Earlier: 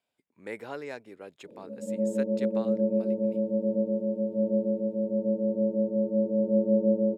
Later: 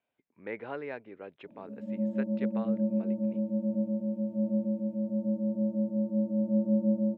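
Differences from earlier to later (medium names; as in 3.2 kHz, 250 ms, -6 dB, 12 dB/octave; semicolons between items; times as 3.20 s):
speech: add low-pass 2.9 kHz 24 dB/octave; background: add Chebyshev band-stop 290–660 Hz, order 2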